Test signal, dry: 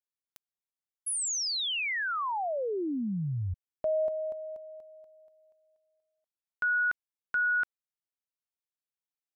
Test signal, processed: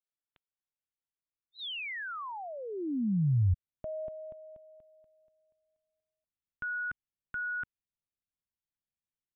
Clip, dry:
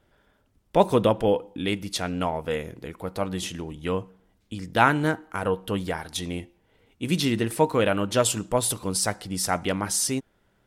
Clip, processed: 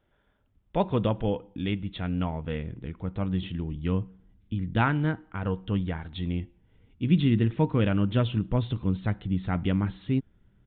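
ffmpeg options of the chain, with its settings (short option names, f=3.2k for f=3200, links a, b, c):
-af "asubboost=boost=6.5:cutoff=240,aresample=8000,aresample=44100,volume=-6.5dB"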